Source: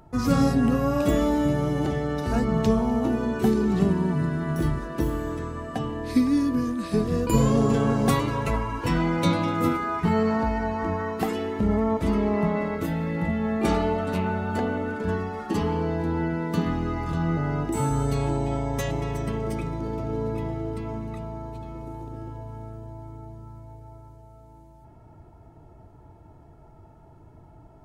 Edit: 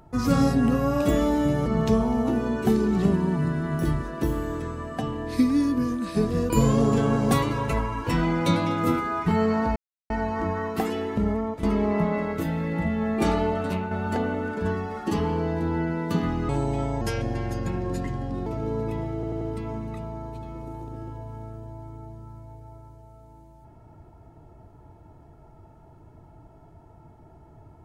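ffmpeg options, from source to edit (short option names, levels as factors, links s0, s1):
-filter_complex "[0:a]asplit=11[s0][s1][s2][s3][s4][s5][s6][s7][s8][s9][s10];[s0]atrim=end=1.662[s11];[s1]atrim=start=2.428:end=10.53,asetpts=PTS-STARTPTS,afade=t=out:st=8.098:d=0.004:c=hsin,apad=pad_dur=0.34[s12];[s2]atrim=start=10.53:end=12.06,asetpts=PTS-STARTPTS,afade=t=in:d=0.004:c=hsin,afade=t=out:st=1.03:d=0.5:silence=0.316228[s13];[s3]atrim=start=12.06:end=14.34,asetpts=PTS-STARTPTS,afade=t=in:d=0.004:c=hsin:silence=0.316228,afade=t=out:st=1.96:d=0.32:c=qsin:silence=0.446684[s14];[s4]atrim=start=14.34:end=16.922,asetpts=PTS-STARTPTS,afade=t=in:d=0.004:c=hsin:silence=0.446684[s15];[s5]atrim=start=18.218:end=18.744[s16];[s6]atrim=start=18.74:end=19.93,asetpts=PTS-STARTPTS,asetrate=36162,aresample=44100[s17];[s7]atrim=start=19.926:end=20.702[s18];[s8]atrim=start=20.608:end=20.702[s19];[s9]atrim=start=20.608:end=20.702[s20];[s10]atrim=start=20.608[s21];[s12][s13][s14][s15]concat=n=4:v=0:a=1[s22];[s11][s22]acrossfade=d=0.004:c1=hsin:c2=hsin[s23];[s23][s16]acrossfade=d=0.004:c1=hsin:c2=hsin[s24];[s24][s17]acrossfade=d=0.004:c1=hsin:c2=hsin[s25];[s25][s18]acrossfade=d=0.004:c1=hsin:c2=hsin[s26];[s26][s19]acrossfade=d=0.004:c1=hsin:c2=hsin[s27];[s27][s20]acrossfade=d=0.004:c1=hsin:c2=hsin[s28];[s28][s21]acrossfade=d=0.004:c1=hsin:c2=hsin"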